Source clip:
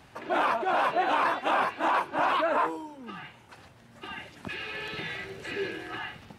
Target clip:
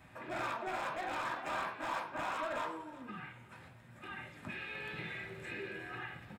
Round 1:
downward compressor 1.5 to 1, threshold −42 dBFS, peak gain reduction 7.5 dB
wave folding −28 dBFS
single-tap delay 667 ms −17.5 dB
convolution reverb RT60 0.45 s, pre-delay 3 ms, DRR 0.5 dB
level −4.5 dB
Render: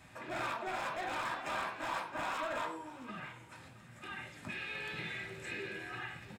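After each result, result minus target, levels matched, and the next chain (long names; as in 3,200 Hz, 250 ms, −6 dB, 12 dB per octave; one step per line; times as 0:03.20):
echo 298 ms late; 8,000 Hz band +3.0 dB
downward compressor 1.5 to 1, threshold −42 dBFS, peak gain reduction 7.5 dB
wave folding −28 dBFS
single-tap delay 369 ms −17.5 dB
convolution reverb RT60 0.45 s, pre-delay 3 ms, DRR 0.5 dB
level −4.5 dB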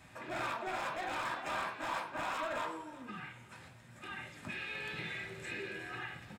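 8,000 Hz band +3.0 dB
downward compressor 1.5 to 1, threshold −42 dBFS, peak gain reduction 7.5 dB
parametric band 6,500 Hz −9 dB 1.7 octaves
wave folding −28 dBFS
single-tap delay 369 ms −17.5 dB
convolution reverb RT60 0.45 s, pre-delay 3 ms, DRR 0.5 dB
level −4.5 dB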